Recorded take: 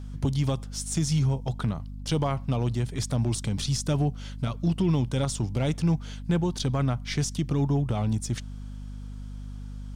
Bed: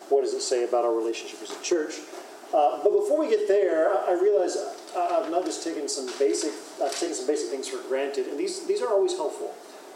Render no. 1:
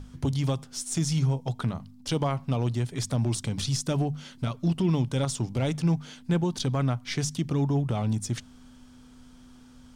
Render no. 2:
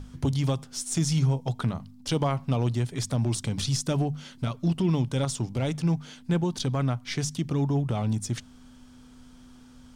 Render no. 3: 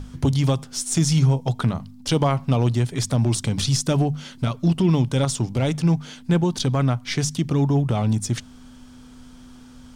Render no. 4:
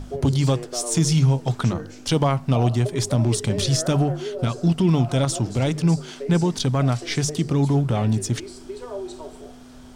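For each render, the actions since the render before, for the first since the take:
hum notches 50/100/150/200 Hz
gain riding 2 s
trim +6 dB
add bed -9.5 dB

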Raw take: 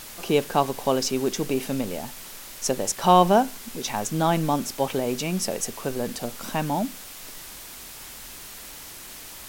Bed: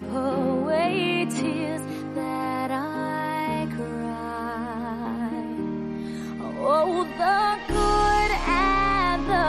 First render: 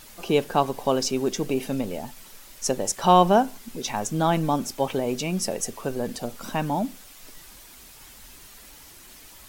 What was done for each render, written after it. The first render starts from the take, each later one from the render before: noise reduction 8 dB, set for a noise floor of -41 dBFS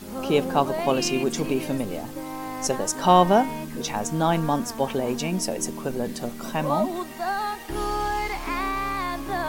add bed -6 dB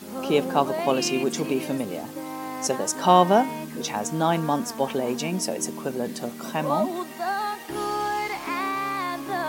high-pass 150 Hz 12 dB/octave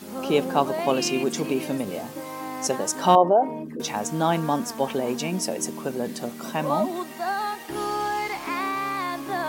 1.84–2.41 s: doubling 21 ms -6 dB; 3.15–3.80 s: resonances exaggerated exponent 2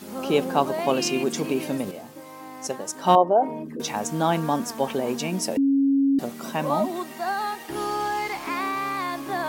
1.91–3.36 s: upward expansion, over -27 dBFS; 5.57–6.19 s: bleep 275 Hz -16.5 dBFS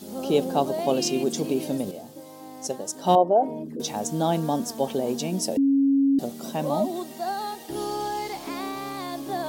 high-order bell 1.6 kHz -9.5 dB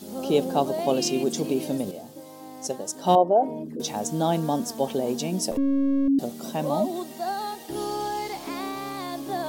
5.51–6.08 s: partial rectifier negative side -7 dB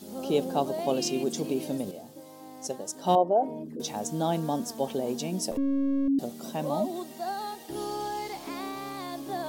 trim -4 dB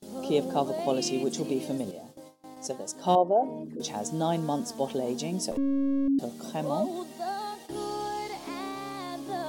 gate with hold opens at -36 dBFS; peaking EQ 14 kHz -12 dB 0.31 oct

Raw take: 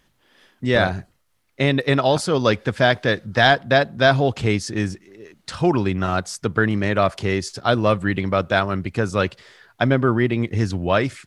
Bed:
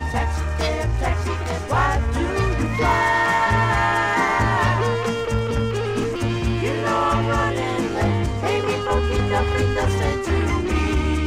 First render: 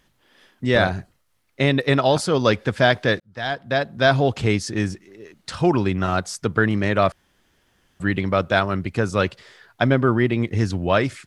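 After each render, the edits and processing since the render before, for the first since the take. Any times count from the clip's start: 3.20–4.21 s: fade in; 7.12–8.00 s: room tone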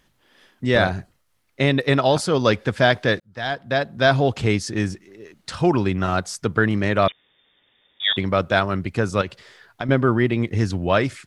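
7.08–8.17 s: frequency inversion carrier 3.6 kHz; 9.21–9.89 s: compression, threshold -23 dBFS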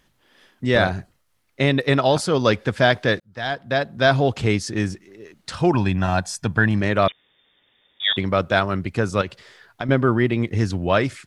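5.74–6.81 s: comb 1.2 ms, depth 55%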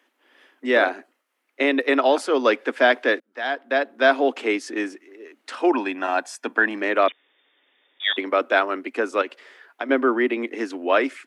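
steep high-pass 250 Hz 72 dB/octave; resonant high shelf 3.3 kHz -6 dB, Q 1.5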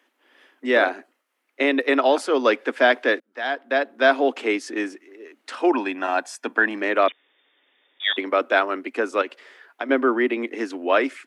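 no audible change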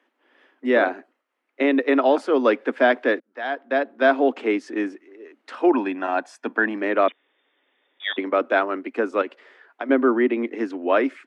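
low-pass 1.8 kHz 6 dB/octave; dynamic bell 190 Hz, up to +5 dB, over -34 dBFS, Q 0.94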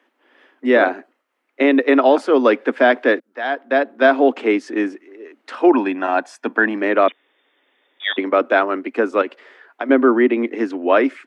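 trim +5 dB; peak limiter -3 dBFS, peak gain reduction 2 dB

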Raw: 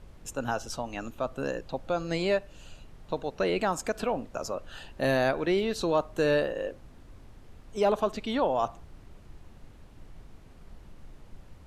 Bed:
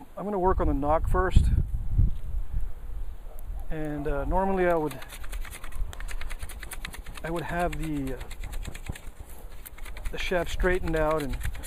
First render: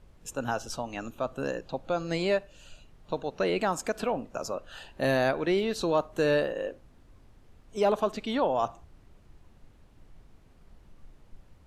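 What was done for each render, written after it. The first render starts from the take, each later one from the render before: noise print and reduce 6 dB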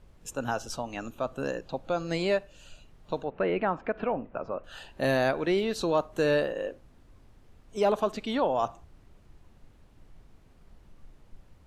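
3.24–4.64 s: low-pass 2.5 kHz 24 dB/octave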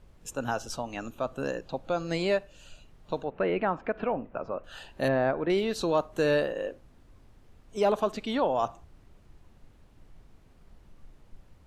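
5.08–5.50 s: low-pass 1.6 kHz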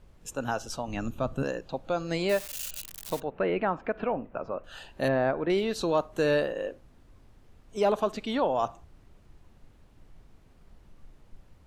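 0.88–1.43 s: tone controls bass +11 dB, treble 0 dB; 2.29–3.20 s: zero-crossing glitches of -26.5 dBFS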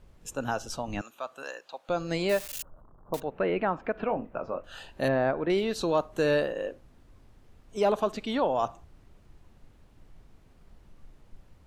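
1.01–1.89 s: high-pass 870 Hz; 2.62–3.14 s: elliptic low-pass 1.2 kHz, stop band 50 dB; 4.06–4.91 s: doubling 23 ms -9.5 dB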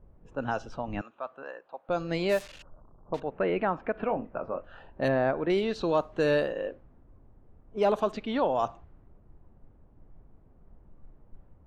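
level-controlled noise filter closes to 860 Hz, open at -21.5 dBFS; treble shelf 6.6 kHz -6 dB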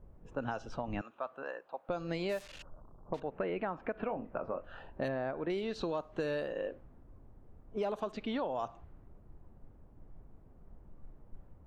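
compression 5:1, threshold -33 dBFS, peak gain reduction 12 dB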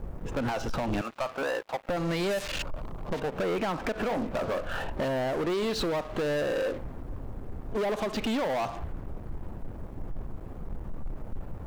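compression 10:1, threshold -36 dBFS, peak gain reduction 7 dB; waveshaping leveller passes 5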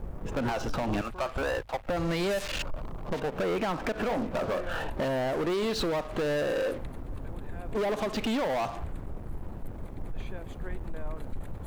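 add bed -18.5 dB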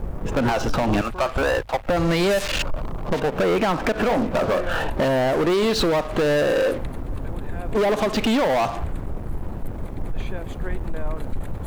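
trim +9 dB

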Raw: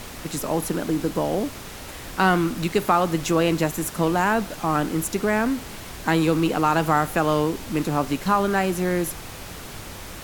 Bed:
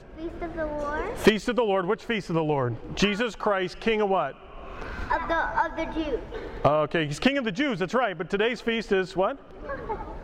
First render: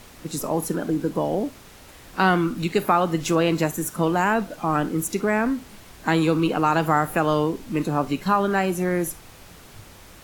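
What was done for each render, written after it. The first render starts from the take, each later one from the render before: noise print and reduce 9 dB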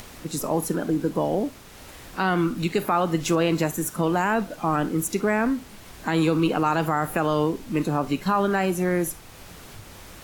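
upward compressor, threshold -37 dBFS; peak limiter -11 dBFS, peak gain reduction 5.5 dB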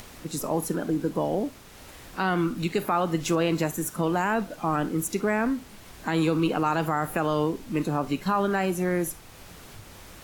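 trim -2.5 dB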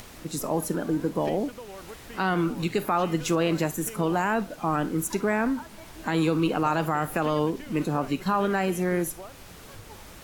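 add bed -18.5 dB

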